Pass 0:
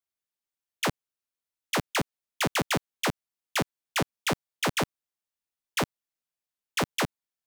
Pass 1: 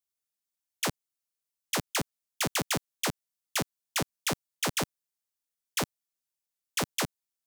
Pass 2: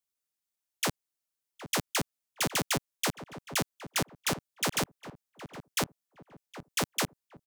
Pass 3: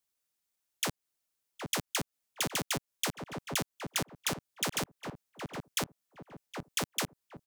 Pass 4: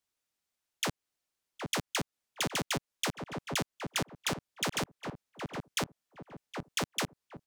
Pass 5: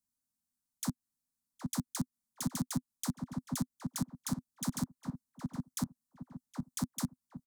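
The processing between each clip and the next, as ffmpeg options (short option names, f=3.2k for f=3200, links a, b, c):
-af "bass=f=250:g=1,treble=f=4k:g=8,volume=-4.5dB"
-filter_complex "[0:a]asplit=2[a][b];[b]adelay=765,lowpass=f=1.2k:p=1,volume=-11.5dB,asplit=2[c][d];[d]adelay=765,lowpass=f=1.2k:p=1,volume=0.37,asplit=2[e][f];[f]adelay=765,lowpass=f=1.2k:p=1,volume=0.37,asplit=2[g][h];[h]adelay=765,lowpass=f=1.2k:p=1,volume=0.37[i];[a][c][e][g][i]amix=inputs=5:normalize=0"
-af "acompressor=threshold=-34dB:ratio=4,volume=4dB"
-af "highshelf=f=8.9k:g=-10,volume=1.5dB"
-af "firequalizer=gain_entry='entry(120,0);entry(250,8);entry(370,-20);entry(980,-7);entry(2700,-24);entry(4000,-9);entry(8600,0)':delay=0.05:min_phase=1"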